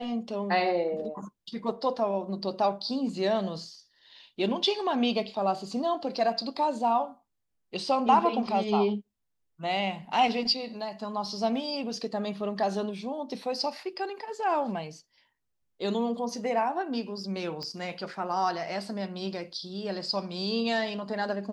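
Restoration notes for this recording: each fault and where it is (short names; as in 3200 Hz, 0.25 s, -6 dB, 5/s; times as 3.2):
17.63 pop -25 dBFS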